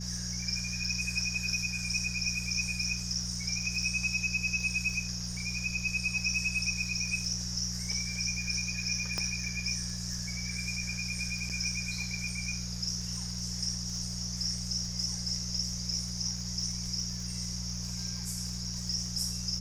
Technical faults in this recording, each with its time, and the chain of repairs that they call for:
surface crackle 26 per second −37 dBFS
mains hum 60 Hz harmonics 3 −39 dBFS
0:09.18: click −18 dBFS
0:11.49–0:11.50: drop-out 7.6 ms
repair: click removal
hum removal 60 Hz, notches 3
repair the gap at 0:11.49, 7.6 ms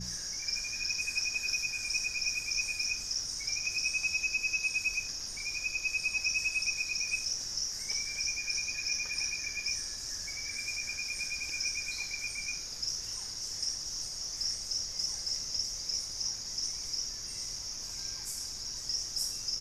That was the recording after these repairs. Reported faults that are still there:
0:09.18: click

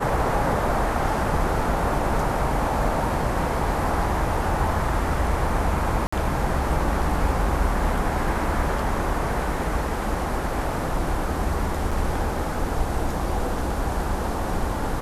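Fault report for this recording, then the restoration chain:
0:06.07–0:06.12: drop-out 55 ms
0:11.91–0:11.92: drop-out 5.4 ms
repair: repair the gap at 0:06.07, 55 ms
repair the gap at 0:11.91, 5.4 ms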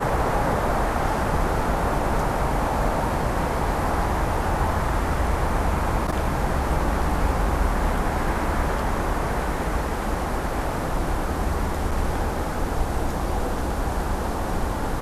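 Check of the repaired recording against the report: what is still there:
none of them is left

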